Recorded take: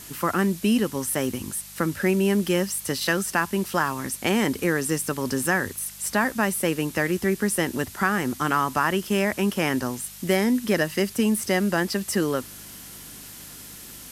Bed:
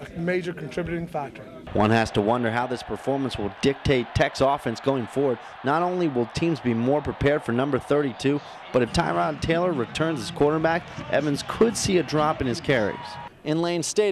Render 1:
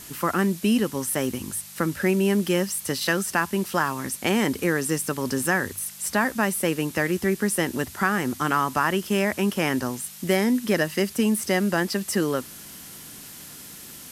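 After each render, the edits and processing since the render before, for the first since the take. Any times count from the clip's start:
hum removal 50 Hz, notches 2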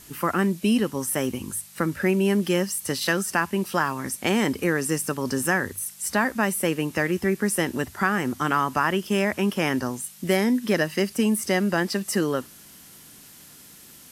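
noise reduction from a noise print 6 dB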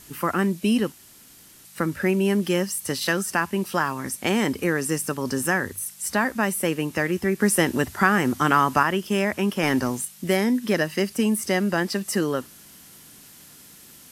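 0:00.92–0:01.65: fill with room tone
0:07.40–0:08.83: clip gain +4 dB
0:09.63–0:10.05: leveller curve on the samples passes 1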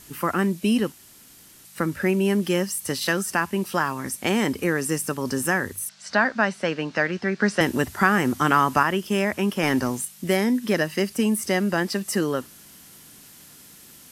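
0:05.89–0:07.61: loudspeaker in its box 160–5,700 Hz, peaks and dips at 350 Hz −6 dB, 660 Hz +5 dB, 1,500 Hz +7 dB, 4,300 Hz +5 dB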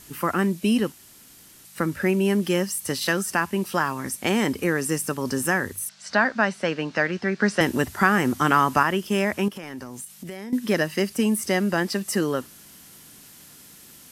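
0:09.48–0:10.53: downward compressor, threshold −33 dBFS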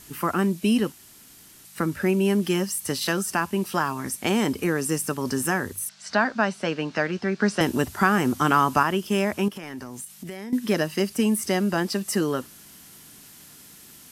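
notch filter 530 Hz, Q 12
dynamic equaliser 1,900 Hz, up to −6 dB, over −39 dBFS, Q 3.2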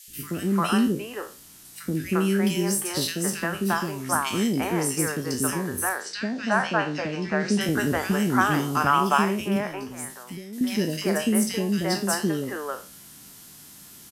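peak hold with a decay on every bin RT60 0.34 s
three-band delay without the direct sound highs, lows, mids 80/350 ms, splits 460/2,200 Hz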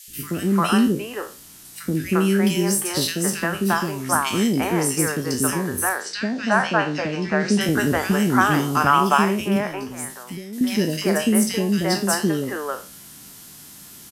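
level +4 dB
brickwall limiter −3 dBFS, peak gain reduction 1 dB

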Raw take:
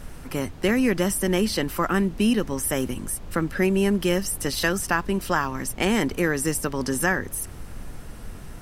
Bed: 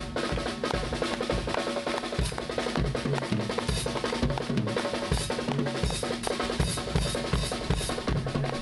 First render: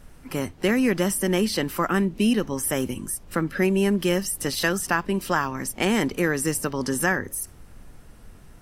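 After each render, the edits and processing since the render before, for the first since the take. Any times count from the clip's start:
noise reduction from a noise print 9 dB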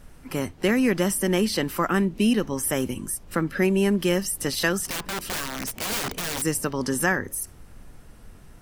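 0:04.85–0:06.42: wrap-around overflow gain 23.5 dB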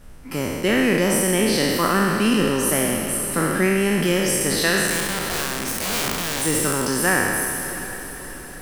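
peak hold with a decay on every bin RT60 2.00 s
feedback delay with all-pass diffusion 663 ms, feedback 55%, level −13 dB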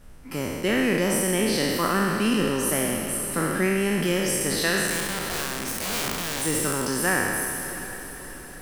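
level −4 dB

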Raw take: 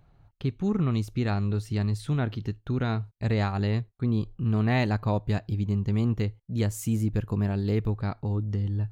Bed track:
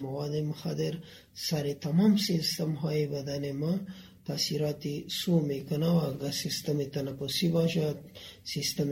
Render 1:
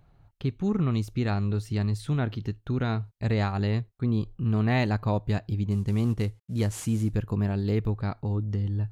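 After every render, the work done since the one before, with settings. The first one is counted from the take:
0:05.71–0:07.15: variable-slope delta modulation 64 kbit/s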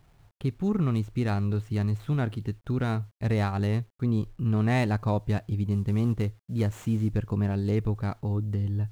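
running median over 9 samples
bit reduction 11 bits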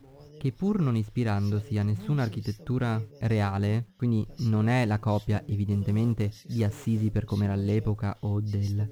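mix in bed track −17.5 dB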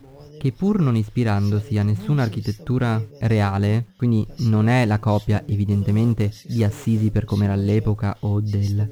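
level +7 dB

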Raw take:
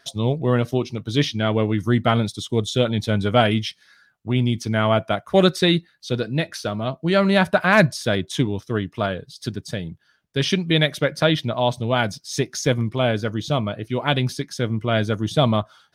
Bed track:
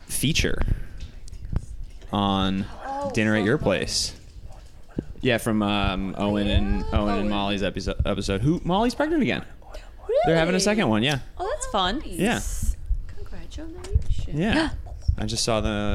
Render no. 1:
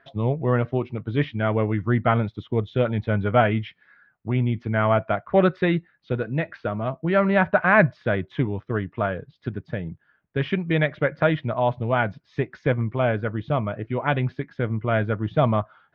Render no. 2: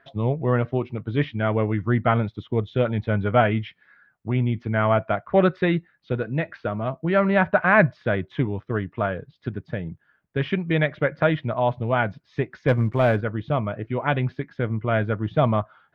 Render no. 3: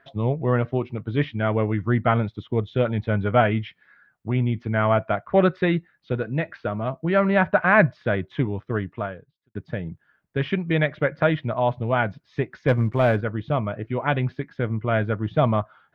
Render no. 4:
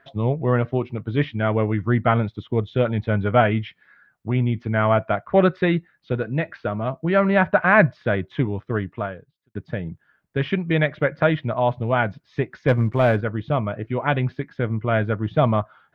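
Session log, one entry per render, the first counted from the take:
low-pass filter 2,200 Hz 24 dB per octave; dynamic equaliser 260 Hz, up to −4 dB, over −28 dBFS, Q 0.83
0:12.68–0:13.21: leveller curve on the samples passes 1
0:08.89–0:09.55: fade out quadratic
level +1.5 dB

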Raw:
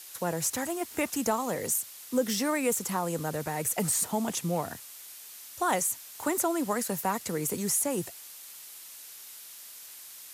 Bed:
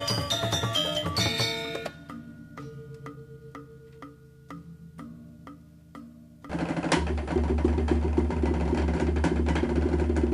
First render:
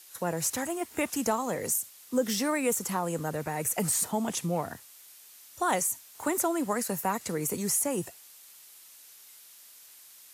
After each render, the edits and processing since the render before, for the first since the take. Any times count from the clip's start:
noise reduction from a noise print 6 dB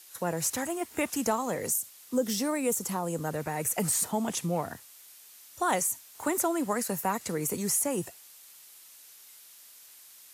0:01.68–0:03.24: dynamic equaliser 1,800 Hz, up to −6 dB, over −44 dBFS, Q 0.79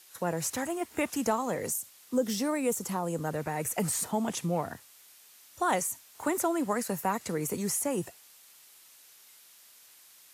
high-shelf EQ 5,100 Hz −5 dB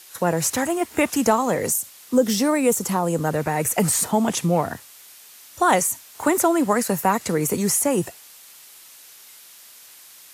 level +10 dB

